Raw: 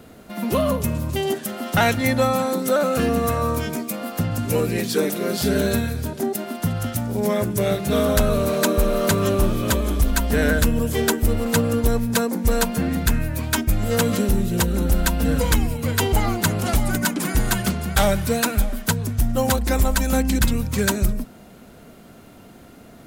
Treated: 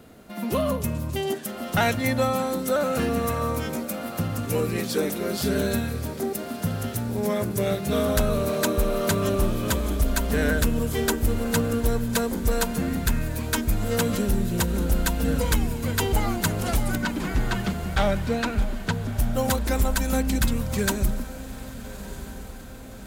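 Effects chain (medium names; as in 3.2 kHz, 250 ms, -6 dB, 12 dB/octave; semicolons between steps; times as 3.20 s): 16.95–19.17 s: low-pass 3.9 kHz 12 dB/octave; echo that smears into a reverb 1253 ms, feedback 56%, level -14.5 dB; trim -4 dB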